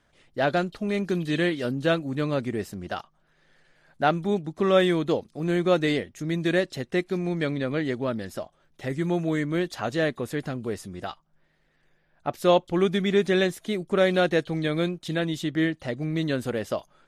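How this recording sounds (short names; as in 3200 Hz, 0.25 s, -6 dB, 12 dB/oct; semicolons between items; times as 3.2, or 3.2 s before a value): noise floor -67 dBFS; spectral tilt -5.0 dB/oct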